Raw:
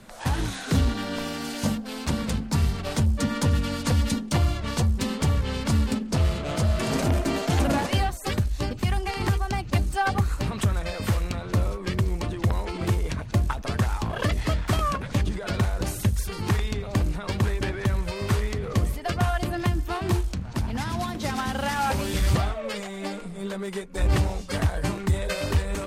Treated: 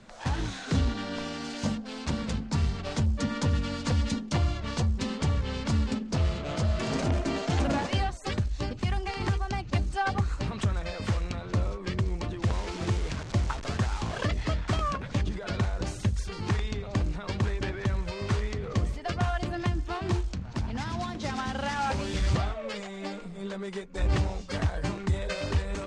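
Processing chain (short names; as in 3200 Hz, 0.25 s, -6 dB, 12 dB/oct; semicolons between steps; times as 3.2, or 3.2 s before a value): 12.42–14.24 delta modulation 64 kbps, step -29 dBFS; LPF 7300 Hz 24 dB/oct; gain -4 dB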